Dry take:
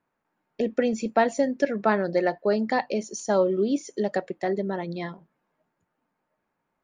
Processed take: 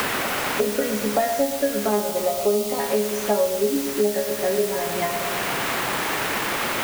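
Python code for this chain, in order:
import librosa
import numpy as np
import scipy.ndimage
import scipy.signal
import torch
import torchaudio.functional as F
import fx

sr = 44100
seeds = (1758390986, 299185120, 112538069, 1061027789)

p1 = fx.peak_eq(x, sr, hz=580.0, db=4.5, octaves=1.7)
p2 = fx.resonator_bank(p1, sr, root=49, chord='fifth', decay_s=0.37)
p3 = fx.quant_dither(p2, sr, seeds[0], bits=6, dither='triangular')
p4 = p2 + (p3 * librosa.db_to_amplitude(-4.0))
p5 = fx.peak_eq(p4, sr, hz=1700.0, db=-14.0, octaves=0.4, at=(1.89, 2.8))
p6 = p5 + fx.echo_feedback(p5, sr, ms=114, feedback_pct=58, wet_db=-10, dry=0)
p7 = fx.band_squash(p6, sr, depth_pct=100)
y = p7 * librosa.db_to_amplitude(7.0)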